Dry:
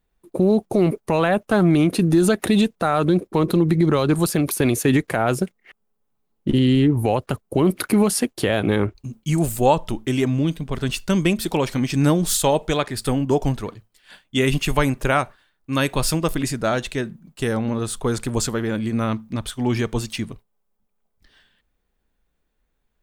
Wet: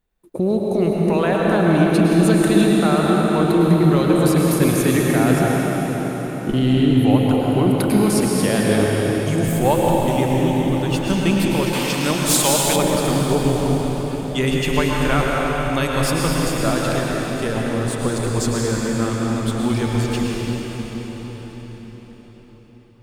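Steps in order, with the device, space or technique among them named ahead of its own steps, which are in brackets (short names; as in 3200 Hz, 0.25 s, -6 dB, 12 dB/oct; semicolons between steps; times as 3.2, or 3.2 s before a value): cathedral (reverb RT60 5.7 s, pre-delay 0.1 s, DRR -3.5 dB); 11.73–12.76 tilt shelf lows -6 dB, about 710 Hz; gain -2.5 dB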